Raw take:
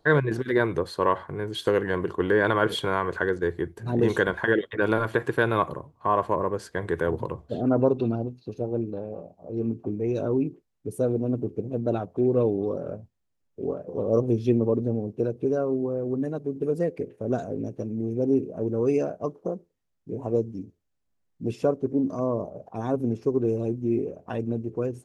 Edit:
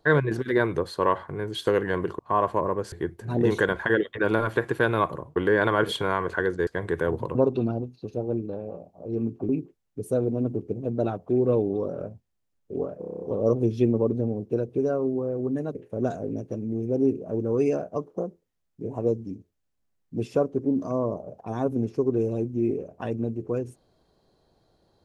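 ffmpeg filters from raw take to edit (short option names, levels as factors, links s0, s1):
-filter_complex "[0:a]asplit=15[s0][s1][s2][s3][s4][s5][s6][s7][s8][s9][s10][s11][s12][s13][s14];[s0]atrim=end=2.192[s15];[s1]atrim=start=5.938:end=6.672[s16];[s2]atrim=start=3.498:end=5.942[s17];[s3]atrim=start=2.188:end=3.502[s18];[s4]atrim=start=6.668:end=7.352[s19];[s5]atrim=start=7.788:end=9.932[s20];[s6]atrim=start=10.368:end=13.902[s21];[s7]atrim=start=13.868:end=13.902[s22];[s8]atrim=start=13.868:end=13.902[s23];[s9]atrim=start=13.868:end=13.902[s24];[s10]atrim=start=13.868:end=13.902[s25];[s11]atrim=start=13.868:end=13.902[s26];[s12]atrim=start=13.868:end=13.902[s27];[s13]atrim=start=13.868:end=16.422[s28];[s14]atrim=start=17.028[s29];[s15][s16]acrossfade=d=0.004:c1=hsin:c2=hsin[s30];[s30][s17]acrossfade=d=0.004:c1=hsin:c2=hsin[s31];[s31][s18]acrossfade=d=0.004:c1=hsin:c2=hsin[s32];[s32][s19]acrossfade=d=0.004:c1=hsin:c2=hsin[s33];[s33][s20]acrossfade=d=0.004:c1=hsin:c2=hsin[s34];[s34][s21]acrossfade=d=0.004:c1=hsin:c2=hsin[s35];[s35][s22]acrossfade=d=0.004:c1=hsin:c2=hsin[s36];[s36][s23]acrossfade=d=0.004:c1=hsin:c2=hsin[s37];[s37][s24]acrossfade=d=0.004:c1=hsin:c2=hsin[s38];[s38][s25]acrossfade=d=0.004:c1=hsin:c2=hsin[s39];[s39][s26]acrossfade=d=0.004:c1=hsin:c2=hsin[s40];[s40][s27]acrossfade=d=0.004:c1=hsin:c2=hsin[s41];[s41][s28]acrossfade=d=0.004:c1=hsin:c2=hsin[s42];[s42][s29]acrossfade=d=0.004:c1=hsin:c2=hsin"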